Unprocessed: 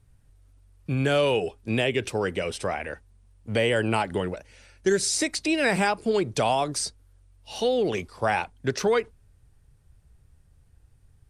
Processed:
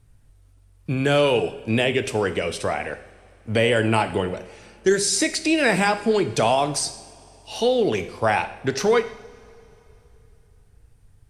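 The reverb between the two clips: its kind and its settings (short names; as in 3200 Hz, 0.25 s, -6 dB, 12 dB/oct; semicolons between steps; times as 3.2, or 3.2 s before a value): two-slope reverb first 0.68 s, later 3.3 s, from -18 dB, DRR 9 dB; gain +3.5 dB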